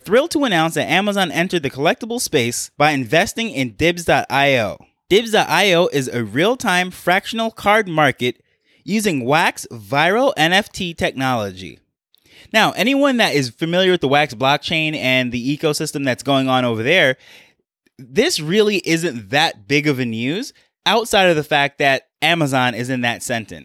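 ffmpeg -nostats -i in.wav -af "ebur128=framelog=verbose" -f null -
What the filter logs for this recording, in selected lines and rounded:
Integrated loudness:
  I:         -16.9 LUFS
  Threshold: -27.3 LUFS
Loudness range:
  LRA:         2.0 LU
  Threshold: -37.3 LUFS
  LRA low:   -18.3 LUFS
  LRA high:  -16.3 LUFS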